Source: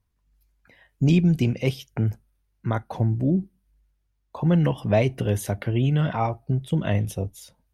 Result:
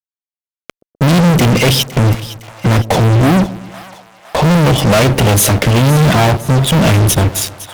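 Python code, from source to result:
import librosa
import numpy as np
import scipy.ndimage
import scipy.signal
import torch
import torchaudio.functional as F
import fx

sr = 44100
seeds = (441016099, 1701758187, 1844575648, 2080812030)

y = fx.band_shelf(x, sr, hz=1200.0, db=-8.0, octaves=1.3)
y = fx.fuzz(y, sr, gain_db=43.0, gate_db=-46.0)
y = fx.echo_split(y, sr, split_hz=650.0, low_ms=126, high_ms=510, feedback_pct=52, wet_db=-15.5)
y = F.gain(torch.from_numpy(y), 5.0).numpy()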